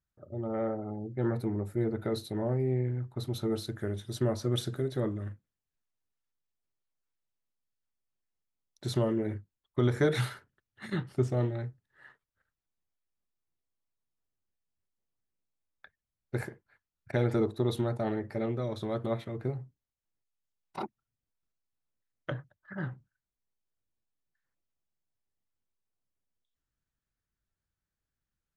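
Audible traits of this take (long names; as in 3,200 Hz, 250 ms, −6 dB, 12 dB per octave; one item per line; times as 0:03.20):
background noise floor −90 dBFS
spectral slope −7.0 dB per octave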